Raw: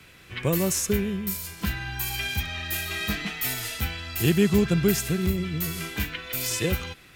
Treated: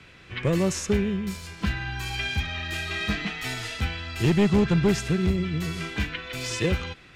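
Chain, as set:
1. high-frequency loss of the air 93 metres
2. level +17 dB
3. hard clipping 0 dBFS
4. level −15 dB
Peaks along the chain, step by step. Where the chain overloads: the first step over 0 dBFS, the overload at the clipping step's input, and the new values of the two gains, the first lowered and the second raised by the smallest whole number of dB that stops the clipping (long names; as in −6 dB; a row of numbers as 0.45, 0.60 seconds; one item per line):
−9.5, +7.5, 0.0, −15.0 dBFS
step 2, 7.5 dB
step 2 +9 dB, step 4 −7 dB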